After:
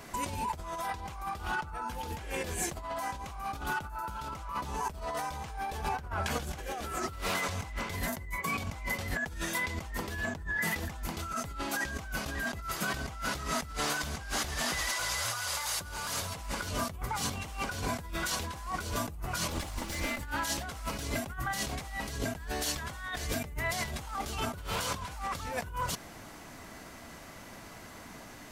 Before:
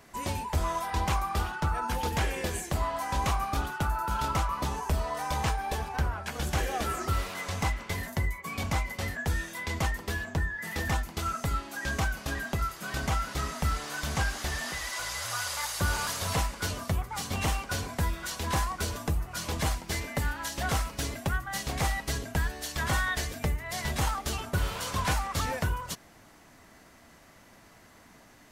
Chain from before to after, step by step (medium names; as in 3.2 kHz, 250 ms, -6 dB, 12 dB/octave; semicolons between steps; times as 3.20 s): 19.50–20.25 s: comb filter that takes the minimum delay 3.5 ms; band-stop 1.8 kHz, Q 24; compressor with a negative ratio -38 dBFS, ratio -1; trim +1.5 dB